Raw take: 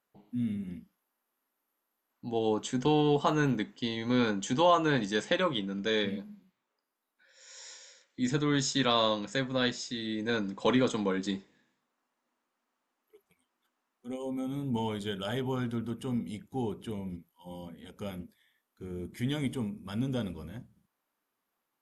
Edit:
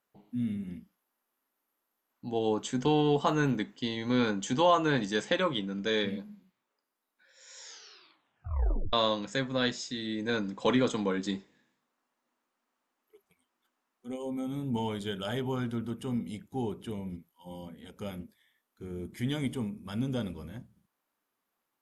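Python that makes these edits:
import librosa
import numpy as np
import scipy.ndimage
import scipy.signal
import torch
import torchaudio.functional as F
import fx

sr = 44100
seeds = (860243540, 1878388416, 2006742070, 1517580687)

y = fx.edit(x, sr, fx.tape_stop(start_s=7.61, length_s=1.32), tone=tone)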